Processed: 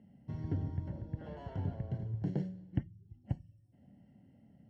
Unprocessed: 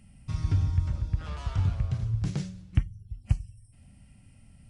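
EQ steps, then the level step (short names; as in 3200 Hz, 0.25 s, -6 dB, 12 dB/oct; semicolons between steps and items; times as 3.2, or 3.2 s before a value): running mean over 36 samples; HPF 250 Hz 12 dB/oct; air absorption 54 m; +5.0 dB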